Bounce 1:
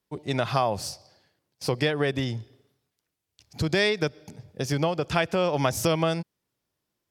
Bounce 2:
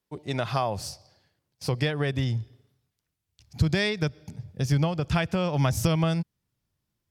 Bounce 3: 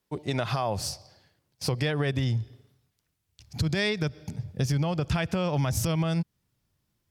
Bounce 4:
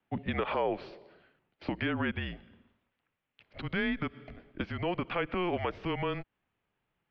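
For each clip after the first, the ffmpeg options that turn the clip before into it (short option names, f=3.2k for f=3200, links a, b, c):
-af "asubboost=boost=4.5:cutoff=180,volume=-2.5dB"
-af "alimiter=limit=-18.5dB:level=0:latency=1:release=82,acompressor=threshold=-30dB:ratio=2,volume=4.5dB"
-filter_complex "[0:a]acrossover=split=230|900[a][b][c];[a]acompressor=threshold=-38dB:ratio=4[d];[b]acompressor=threshold=-33dB:ratio=4[e];[c]acompressor=threshold=-34dB:ratio=4[f];[d][e][f]amix=inputs=3:normalize=0,highpass=f=280:t=q:w=0.5412,highpass=f=280:t=q:w=1.307,lowpass=f=3.1k:t=q:w=0.5176,lowpass=f=3.1k:t=q:w=0.7071,lowpass=f=3.1k:t=q:w=1.932,afreqshift=-180,volume=3dB"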